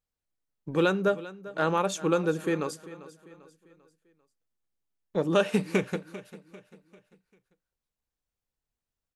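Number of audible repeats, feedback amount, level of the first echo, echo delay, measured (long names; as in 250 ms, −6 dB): 3, 43%, −17.0 dB, 395 ms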